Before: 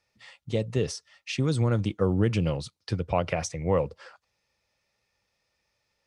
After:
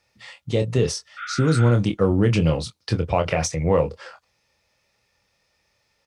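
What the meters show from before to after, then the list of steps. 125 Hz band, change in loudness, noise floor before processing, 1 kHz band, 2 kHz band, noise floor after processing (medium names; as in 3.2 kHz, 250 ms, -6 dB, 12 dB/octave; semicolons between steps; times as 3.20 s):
+6.5 dB, +6.0 dB, -78 dBFS, +6.0 dB, +7.0 dB, -70 dBFS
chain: doubling 25 ms -7.5 dB; in parallel at +2 dB: peak limiter -19 dBFS, peak gain reduction 7.5 dB; on the sum: spectral replace 1.20–1.69 s, 1.2–3.7 kHz after; Chebyshev shaper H 8 -42 dB, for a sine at -7.5 dBFS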